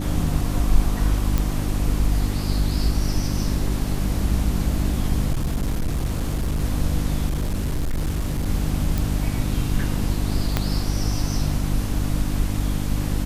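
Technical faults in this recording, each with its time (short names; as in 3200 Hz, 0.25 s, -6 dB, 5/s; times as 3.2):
hum 50 Hz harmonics 6 -25 dBFS
1.38 pop
5.32–6.64 clipped -19 dBFS
7.28–8.47 clipped -19.5 dBFS
8.98 pop
10.57 pop -6 dBFS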